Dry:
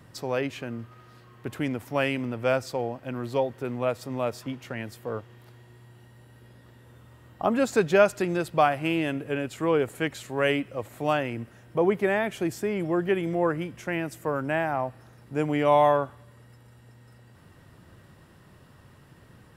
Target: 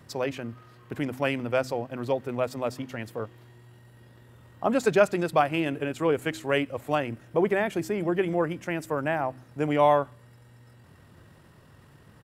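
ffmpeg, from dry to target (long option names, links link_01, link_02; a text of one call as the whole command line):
ffmpeg -i in.wav -af "atempo=1.6,bandreject=frequency=63.73:width_type=h:width=4,bandreject=frequency=127.46:width_type=h:width=4,bandreject=frequency=191.19:width_type=h:width=4,bandreject=frequency=254.92:width_type=h:width=4,bandreject=frequency=318.65:width_type=h:width=4" out.wav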